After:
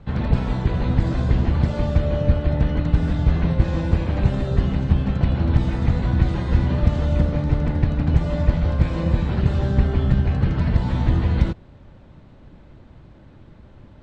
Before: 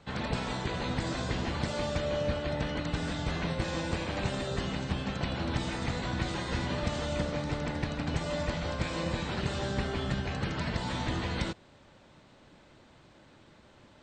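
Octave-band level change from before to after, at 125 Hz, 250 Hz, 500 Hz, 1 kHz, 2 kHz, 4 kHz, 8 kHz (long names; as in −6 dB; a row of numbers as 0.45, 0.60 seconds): +15.5 dB, +10.5 dB, +5.5 dB, +3.0 dB, +1.0 dB, −3.0 dB, can't be measured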